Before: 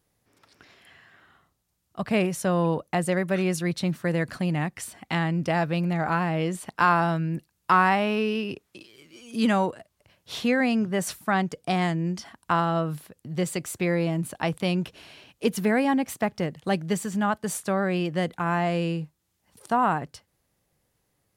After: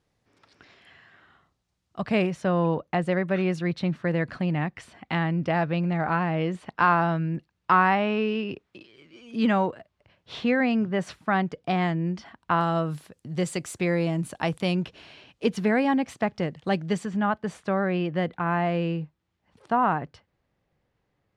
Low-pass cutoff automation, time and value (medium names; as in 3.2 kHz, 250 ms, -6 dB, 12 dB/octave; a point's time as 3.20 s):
5.5 kHz
from 2.30 s 3.3 kHz
from 12.61 s 8.7 kHz
from 14.75 s 5 kHz
from 17.05 s 2.9 kHz